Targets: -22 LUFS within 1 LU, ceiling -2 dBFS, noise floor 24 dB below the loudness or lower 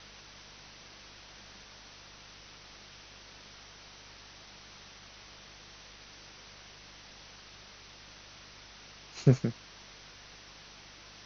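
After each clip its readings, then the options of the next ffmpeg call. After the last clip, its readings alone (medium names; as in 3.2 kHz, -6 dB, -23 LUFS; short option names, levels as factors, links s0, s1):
hum 50 Hz; highest harmonic 200 Hz; hum level -59 dBFS; noise floor -53 dBFS; noise floor target -65 dBFS; loudness -40.5 LUFS; peak level -9.0 dBFS; loudness target -22.0 LUFS
-> -af "bandreject=f=50:t=h:w=4,bandreject=f=100:t=h:w=4,bandreject=f=150:t=h:w=4,bandreject=f=200:t=h:w=4"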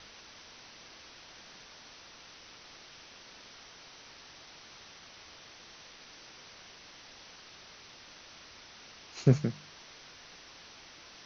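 hum not found; noise floor -53 dBFS; noise floor target -65 dBFS
-> -af "afftdn=nr=12:nf=-53"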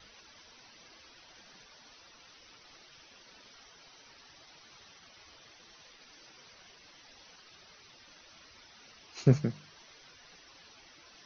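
noise floor -58 dBFS; loudness -30.0 LUFS; peak level -9.0 dBFS; loudness target -22.0 LUFS
-> -af "volume=2.51,alimiter=limit=0.794:level=0:latency=1"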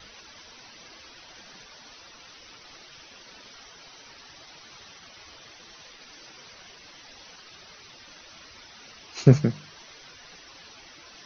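loudness -22.5 LUFS; peak level -2.0 dBFS; noise floor -50 dBFS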